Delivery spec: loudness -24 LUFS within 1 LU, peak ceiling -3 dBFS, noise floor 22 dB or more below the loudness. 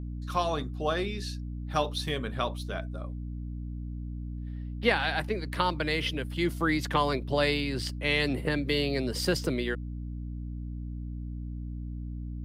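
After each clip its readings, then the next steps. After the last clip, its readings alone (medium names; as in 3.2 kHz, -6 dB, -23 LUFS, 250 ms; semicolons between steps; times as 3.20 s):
hum 60 Hz; highest harmonic 300 Hz; hum level -34 dBFS; loudness -31.0 LUFS; peak level -9.5 dBFS; loudness target -24.0 LUFS
-> hum notches 60/120/180/240/300 Hz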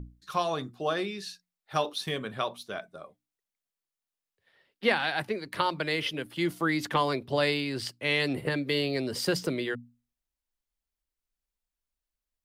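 hum not found; loudness -30.0 LUFS; peak level -9.5 dBFS; loudness target -24.0 LUFS
-> trim +6 dB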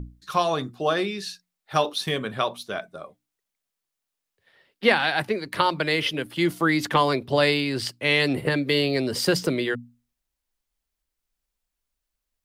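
loudness -24.0 LUFS; peak level -3.5 dBFS; noise floor -84 dBFS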